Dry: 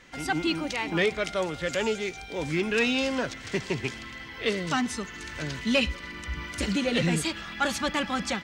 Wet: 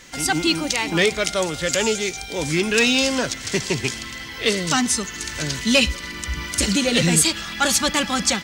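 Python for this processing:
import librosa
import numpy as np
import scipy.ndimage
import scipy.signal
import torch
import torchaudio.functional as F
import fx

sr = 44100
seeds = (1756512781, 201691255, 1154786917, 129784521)

y = fx.bass_treble(x, sr, bass_db=1, treble_db=13)
y = fx.dmg_crackle(y, sr, seeds[0], per_s=310.0, level_db=-54.0)
y = F.gain(torch.from_numpy(y), 5.5).numpy()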